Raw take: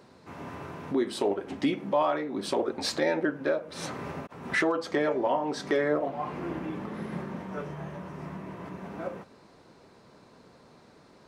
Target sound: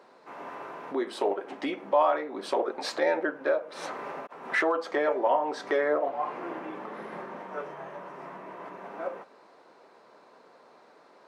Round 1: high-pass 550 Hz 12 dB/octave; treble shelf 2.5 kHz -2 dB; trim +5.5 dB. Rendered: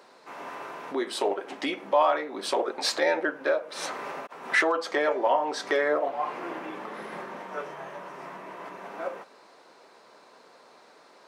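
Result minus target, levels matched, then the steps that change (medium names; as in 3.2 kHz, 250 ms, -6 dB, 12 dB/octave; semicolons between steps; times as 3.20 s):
4 kHz band +6.0 dB
change: treble shelf 2.5 kHz -13 dB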